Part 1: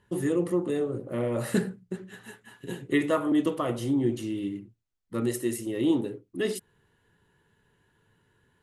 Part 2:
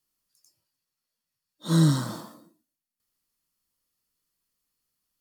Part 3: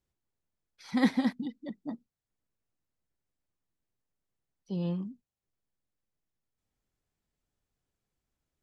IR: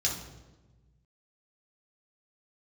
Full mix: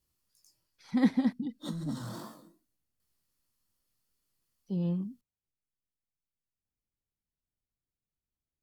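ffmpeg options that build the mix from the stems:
-filter_complex "[1:a]flanger=delay=17.5:depth=6.9:speed=2.6,asoftclip=type=tanh:threshold=-18dB,volume=1.5dB[a];[2:a]lowshelf=f=430:g=9.5,volume=-6.5dB,afade=t=out:st=4.99:d=0.59:silence=0.298538[b];[a]acrossover=split=150[c][d];[d]acompressor=threshold=-36dB:ratio=5[e];[c][e]amix=inputs=2:normalize=0,alimiter=level_in=8.5dB:limit=-24dB:level=0:latency=1:release=23,volume=-8.5dB,volume=0dB[f];[b][f]amix=inputs=2:normalize=0"

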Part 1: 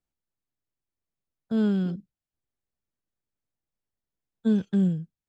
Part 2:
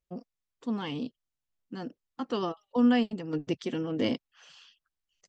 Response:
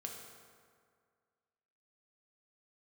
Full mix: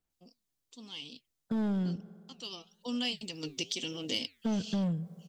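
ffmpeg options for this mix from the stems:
-filter_complex "[0:a]volume=23.5dB,asoftclip=hard,volume=-23.5dB,volume=0.5dB,asplit=2[a][b];[b]volume=-13.5dB[c];[1:a]aexciter=amount=5.7:drive=9.8:freq=2.5k,flanger=delay=1.9:depth=8.2:regen=-88:speed=1:shape=triangular,adelay=100,volume=-3.5dB,afade=t=in:st=2.65:d=0.48:silence=0.281838[d];[2:a]atrim=start_sample=2205[e];[c][e]afir=irnorm=-1:irlink=0[f];[a][d][f]amix=inputs=3:normalize=0,acompressor=threshold=-32dB:ratio=2.5"

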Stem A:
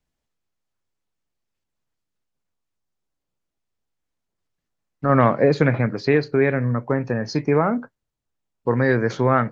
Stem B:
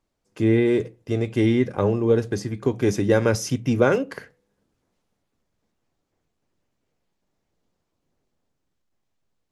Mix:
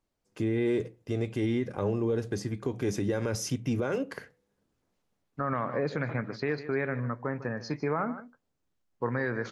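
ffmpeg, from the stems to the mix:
-filter_complex "[0:a]equalizer=f=1.3k:w=1.1:g=6,adelay=350,volume=-11dB,asplit=2[a][b];[b]volume=-16dB[c];[1:a]volume=-4.5dB[d];[c]aecho=0:1:151:1[e];[a][d][e]amix=inputs=3:normalize=0,alimiter=limit=-20dB:level=0:latency=1:release=88"

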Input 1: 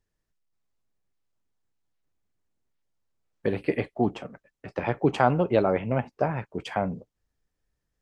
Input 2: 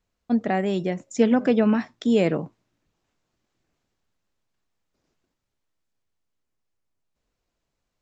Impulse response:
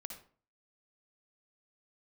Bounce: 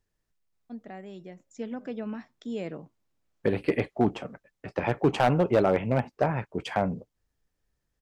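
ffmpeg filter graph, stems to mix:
-filter_complex "[0:a]asoftclip=type=hard:threshold=-15.5dB,volume=1dB,asplit=2[a][b];[1:a]dynaudnorm=f=330:g=9:m=7dB,adelay=400,volume=-10dB[c];[b]apad=whole_len=371134[d];[c][d]sidechaingate=range=-9dB:threshold=-41dB:ratio=16:detection=peak[e];[a][e]amix=inputs=2:normalize=0"

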